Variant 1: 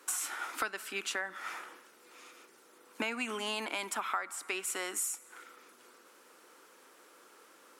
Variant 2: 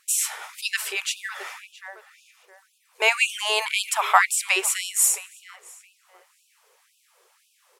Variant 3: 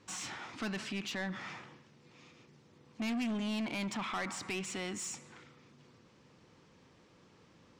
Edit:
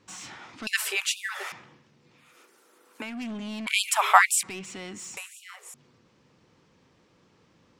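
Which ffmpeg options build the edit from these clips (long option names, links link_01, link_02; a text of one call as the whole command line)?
ffmpeg -i take0.wav -i take1.wav -i take2.wav -filter_complex "[1:a]asplit=3[link_01][link_02][link_03];[2:a]asplit=5[link_04][link_05][link_06][link_07][link_08];[link_04]atrim=end=0.672[link_09];[link_01]atrim=start=0.668:end=1.522[link_10];[link_05]atrim=start=1.518:end=2.39[link_11];[0:a]atrim=start=2.15:end=3.2[link_12];[link_06]atrim=start=2.96:end=3.672[link_13];[link_02]atrim=start=3.668:end=4.432[link_14];[link_07]atrim=start=4.428:end=5.172[link_15];[link_03]atrim=start=5.168:end=5.742[link_16];[link_08]atrim=start=5.738[link_17];[link_09][link_10]acrossfade=duration=0.004:curve1=hsin:curve2=hsin[link_18];[link_18][link_11]acrossfade=duration=0.004:curve1=hsin:curve2=hsin[link_19];[link_19][link_12]acrossfade=duration=0.24:curve1=tri:curve2=tri[link_20];[link_20][link_13]acrossfade=duration=0.24:curve1=tri:curve2=tri[link_21];[link_21][link_14]acrossfade=duration=0.004:curve1=hsin:curve2=hsin[link_22];[link_22][link_15]acrossfade=duration=0.004:curve1=hsin:curve2=hsin[link_23];[link_23][link_16]acrossfade=duration=0.004:curve1=hsin:curve2=hsin[link_24];[link_24][link_17]acrossfade=duration=0.004:curve1=hsin:curve2=hsin" out.wav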